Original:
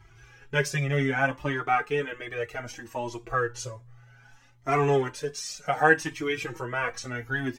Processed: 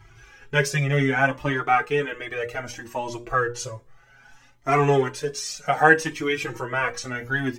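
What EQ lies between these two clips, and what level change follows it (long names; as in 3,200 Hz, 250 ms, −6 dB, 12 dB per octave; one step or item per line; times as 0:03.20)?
mains-hum notches 60/120/180/240/300/360/420/480/540/600 Hz
+4.5 dB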